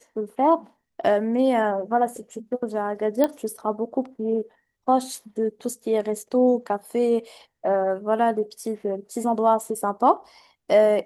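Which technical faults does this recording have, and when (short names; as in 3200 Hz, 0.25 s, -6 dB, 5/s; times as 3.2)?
3.24 pop -9 dBFS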